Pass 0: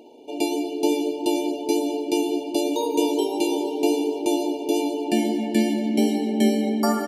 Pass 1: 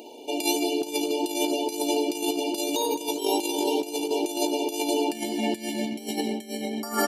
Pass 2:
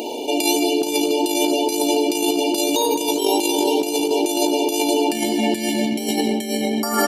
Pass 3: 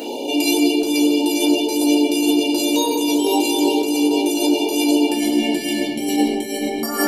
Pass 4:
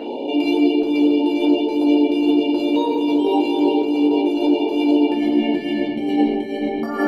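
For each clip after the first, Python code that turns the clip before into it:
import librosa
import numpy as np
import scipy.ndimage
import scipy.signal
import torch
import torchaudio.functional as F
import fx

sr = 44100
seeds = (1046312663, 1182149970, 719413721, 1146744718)

y1 = fx.over_compress(x, sr, threshold_db=-26.0, ratio=-0.5)
y1 = fx.tilt_eq(y1, sr, slope=2.5)
y1 = F.gain(torch.from_numpy(y1), 2.5).numpy()
y2 = fx.env_flatten(y1, sr, amount_pct=50)
y2 = F.gain(torch.from_numpy(y2), 5.0).numpy()
y3 = fx.room_shoebox(y2, sr, seeds[0], volume_m3=130.0, walls='furnished', distance_m=2.0)
y3 = F.gain(torch.from_numpy(y3), -4.5).numpy()
y4 = fx.air_absorb(y3, sr, metres=440.0)
y4 = F.gain(torch.from_numpy(y4), 1.5).numpy()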